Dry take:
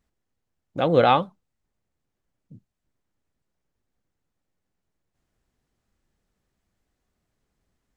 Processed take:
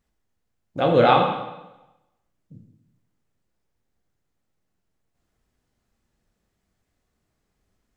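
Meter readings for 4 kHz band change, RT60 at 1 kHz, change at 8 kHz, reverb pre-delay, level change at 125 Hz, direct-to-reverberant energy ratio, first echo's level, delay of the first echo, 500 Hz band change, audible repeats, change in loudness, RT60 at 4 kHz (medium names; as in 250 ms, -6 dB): +2.0 dB, 0.95 s, no reading, 6 ms, +2.0 dB, 1.0 dB, no echo, no echo, +2.0 dB, no echo, +1.0 dB, 0.90 s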